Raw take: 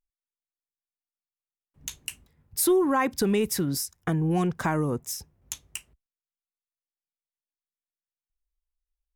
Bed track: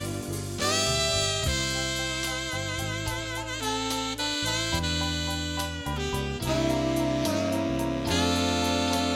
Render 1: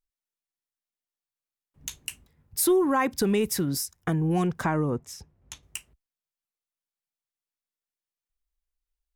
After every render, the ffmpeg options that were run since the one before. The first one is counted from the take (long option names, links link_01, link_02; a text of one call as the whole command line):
ffmpeg -i in.wav -filter_complex "[0:a]asettb=1/sr,asplit=3[link_01][link_02][link_03];[link_01]atrim=end=4.644[link_04];[link_02]atrim=start=4.64:end=5.63,asetpts=PTS-STARTPTS,afade=type=in:duration=0.004:curve=qsin,afade=type=out:start_time=0.986:duration=0.004:curve=qsin,aemphasis=mode=reproduction:type=50fm[link_05];[link_03]atrim=start=5.626[link_06];[link_04][link_05]acrossfade=duration=0.004:curve1=hsin:curve2=qsin[link_07];[link_07][link_06]acrossfade=duration=0.004:curve1=qsin:curve2=hsin" out.wav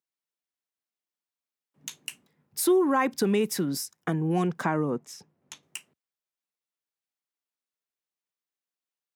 ffmpeg -i in.wav -af "highpass=frequency=160:width=0.5412,highpass=frequency=160:width=1.3066,equalizer=frequency=15000:width_type=o:width=1.4:gain=-5" out.wav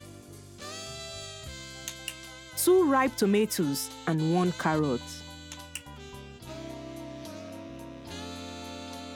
ffmpeg -i in.wav -i bed.wav -filter_complex "[1:a]volume=-15dB[link_01];[0:a][link_01]amix=inputs=2:normalize=0" out.wav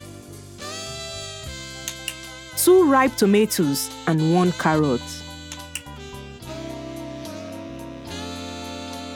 ffmpeg -i in.wav -af "volume=7.5dB" out.wav